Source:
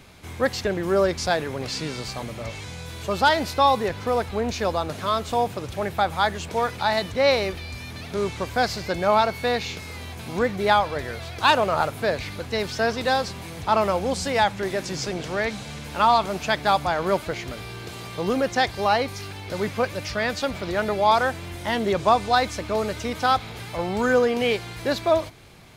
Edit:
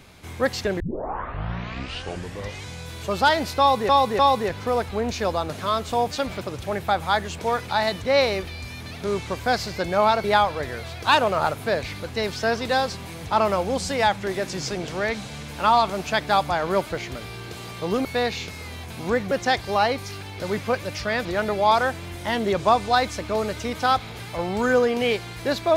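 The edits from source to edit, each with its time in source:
0:00.80: tape start 1.86 s
0:03.59–0:03.89: repeat, 3 plays
0:09.34–0:10.60: move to 0:18.41
0:20.35–0:20.65: move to 0:05.51

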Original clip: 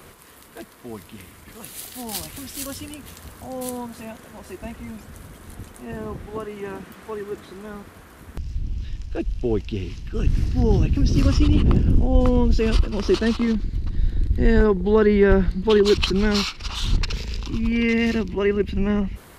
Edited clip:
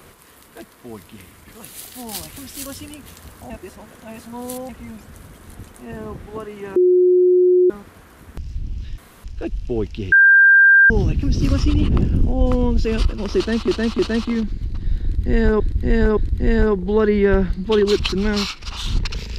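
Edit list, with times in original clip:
0:03.50–0:04.69: reverse
0:06.76–0:07.70: beep over 362 Hz −10 dBFS
0:08.98: splice in room tone 0.26 s
0:09.86–0:10.64: beep over 1,590 Hz −7 dBFS
0:13.11–0:13.42: repeat, 3 plays
0:14.15–0:14.72: repeat, 3 plays

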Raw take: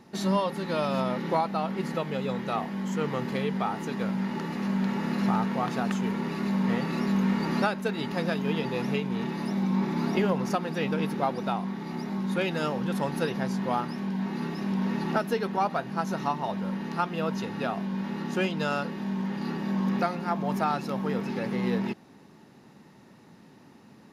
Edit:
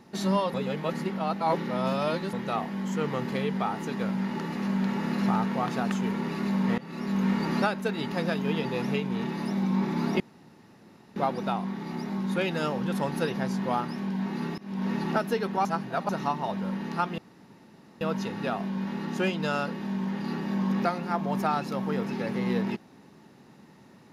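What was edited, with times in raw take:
0:00.54–0:02.33: reverse
0:06.78–0:07.28: fade in, from −18.5 dB
0:10.20–0:11.16: fill with room tone
0:14.58–0:14.90: fade in, from −24 dB
0:15.65–0:16.09: reverse
0:17.18: splice in room tone 0.83 s

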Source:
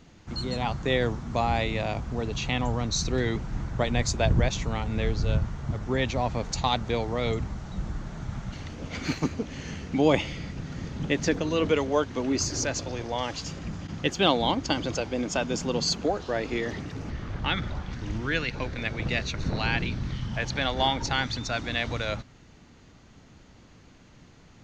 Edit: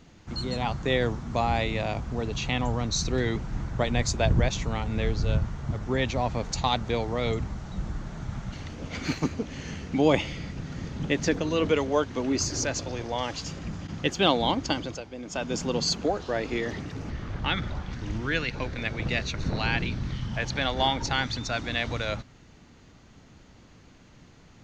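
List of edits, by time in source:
0:14.67–0:15.58: duck −10 dB, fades 0.36 s

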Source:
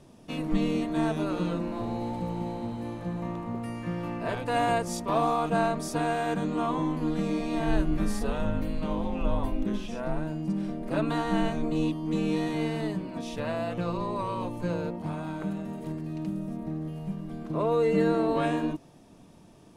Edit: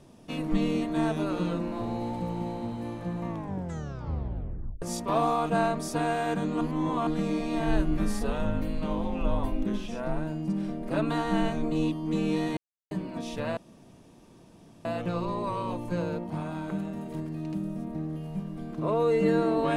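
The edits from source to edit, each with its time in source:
0:03.27: tape stop 1.55 s
0:06.61–0:07.07: reverse
0:12.57–0:12.91: silence
0:13.57: splice in room tone 1.28 s

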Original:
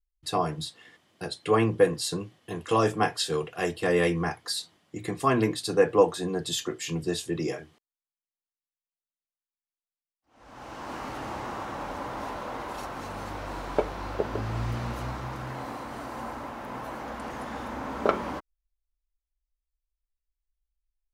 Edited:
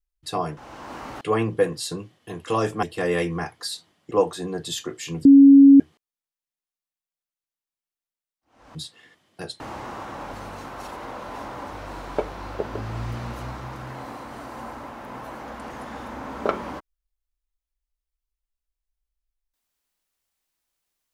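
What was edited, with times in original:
0:00.57–0:01.42: swap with 0:10.56–0:11.20
0:03.04–0:03.68: remove
0:04.96–0:05.92: remove
0:07.06–0:07.61: beep over 277 Hz −6.5 dBFS
0:11.93–0:13.32: reverse

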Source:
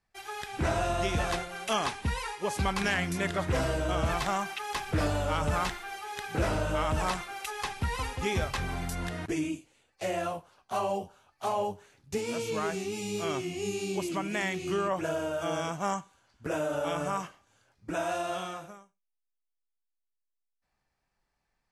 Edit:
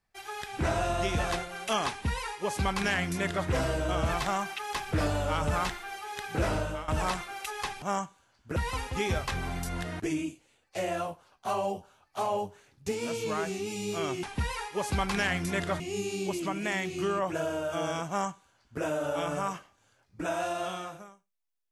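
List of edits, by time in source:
0:01.90–0:03.47: duplicate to 0:13.49
0:06.57–0:06.88: fade out, to −16 dB
0:15.77–0:16.51: duplicate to 0:07.82

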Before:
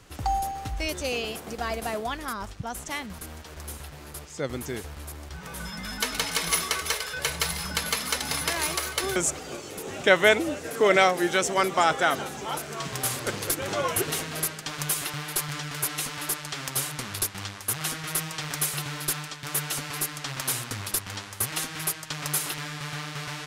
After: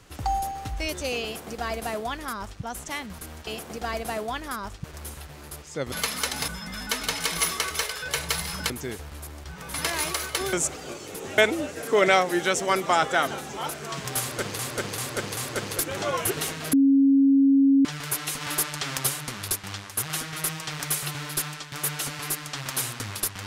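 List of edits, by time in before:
0:01.24–0:02.61: duplicate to 0:03.47
0:04.55–0:05.59: swap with 0:07.81–0:08.37
0:10.01–0:10.26: remove
0:13.08–0:13.47: repeat, 4 plays
0:14.44–0:15.56: beep over 274 Hz −14.5 dBFS
0:16.12–0:16.78: clip gain +3.5 dB

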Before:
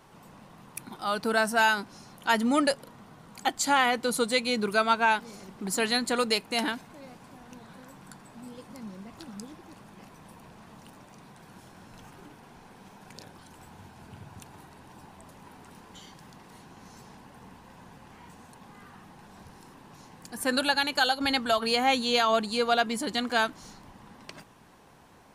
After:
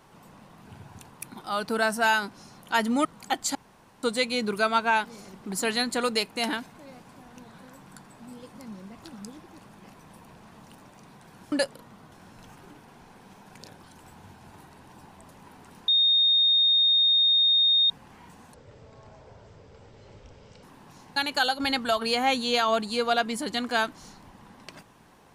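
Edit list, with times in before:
0:02.60–0:03.20: move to 0:11.67
0:03.70–0:04.18: fill with room tone
0:14.06–0:14.51: move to 0:00.65
0:15.88–0:17.90: beep over 3,690 Hz −17.5 dBFS
0:18.54–0:19.67: play speed 54%
0:20.20–0:20.77: remove

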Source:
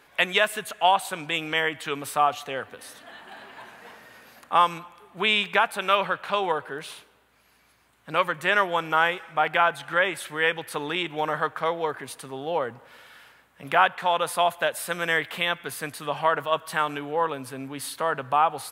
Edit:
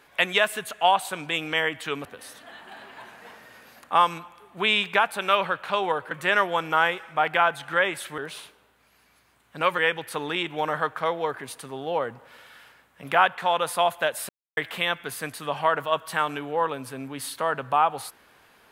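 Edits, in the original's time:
0:02.05–0:02.65: remove
0:06.71–0:08.31: move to 0:10.38
0:14.89–0:15.17: silence

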